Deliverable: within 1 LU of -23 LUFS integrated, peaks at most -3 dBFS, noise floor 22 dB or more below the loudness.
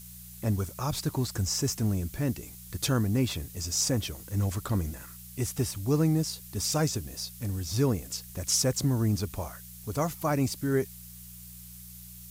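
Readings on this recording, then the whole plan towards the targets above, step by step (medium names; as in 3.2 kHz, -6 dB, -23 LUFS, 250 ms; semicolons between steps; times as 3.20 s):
hum 60 Hz; highest harmonic 180 Hz; hum level -49 dBFS; noise floor -47 dBFS; noise floor target -52 dBFS; loudness -29.5 LUFS; peak level -14.0 dBFS; loudness target -23.0 LUFS
-> de-hum 60 Hz, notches 3; noise print and reduce 6 dB; trim +6.5 dB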